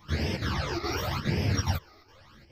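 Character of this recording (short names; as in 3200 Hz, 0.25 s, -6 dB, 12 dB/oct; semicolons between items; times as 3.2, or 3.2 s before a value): phasing stages 12, 0.89 Hz, lowest notch 160–1300 Hz; chopped level 2.4 Hz, depth 60%, duty 85%; a shimmering, thickened sound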